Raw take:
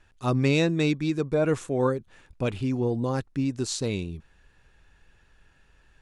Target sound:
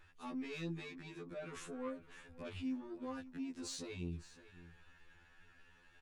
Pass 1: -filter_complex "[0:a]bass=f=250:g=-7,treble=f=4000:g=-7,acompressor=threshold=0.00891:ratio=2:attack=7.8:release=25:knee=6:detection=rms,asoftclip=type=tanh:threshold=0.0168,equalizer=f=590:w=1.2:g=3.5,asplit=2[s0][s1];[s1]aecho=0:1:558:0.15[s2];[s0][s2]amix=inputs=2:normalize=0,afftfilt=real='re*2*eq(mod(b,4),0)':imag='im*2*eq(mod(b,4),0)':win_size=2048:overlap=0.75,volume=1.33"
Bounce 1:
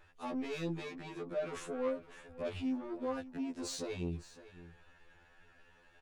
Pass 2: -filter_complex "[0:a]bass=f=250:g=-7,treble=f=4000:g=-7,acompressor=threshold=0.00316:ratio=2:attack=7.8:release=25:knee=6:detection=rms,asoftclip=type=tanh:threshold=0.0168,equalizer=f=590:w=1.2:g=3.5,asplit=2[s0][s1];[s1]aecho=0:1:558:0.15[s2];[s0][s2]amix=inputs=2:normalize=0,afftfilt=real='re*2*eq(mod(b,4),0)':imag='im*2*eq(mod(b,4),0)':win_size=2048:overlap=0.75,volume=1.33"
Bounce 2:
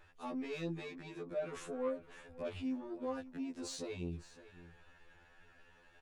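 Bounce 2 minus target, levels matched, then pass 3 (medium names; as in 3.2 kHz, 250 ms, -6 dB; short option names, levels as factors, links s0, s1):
500 Hz band +4.0 dB
-filter_complex "[0:a]bass=f=250:g=-7,treble=f=4000:g=-7,acompressor=threshold=0.00316:ratio=2:attack=7.8:release=25:knee=6:detection=rms,asoftclip=type=tanh:threshold=0.0168,equalizer=f=590:w=1.2:g=-5.5,asplit=2[s0][s1];[s1]aecho=0:1:558:0.15[s2];[s0][s2]amix=inputs=2:normalize=0,afftfilt=real='re*2*eq(mod(b,4),0)':imag='im*2*eq(mod(b,4),0)':win_size=2048:overlap=0.75,volume=1.33"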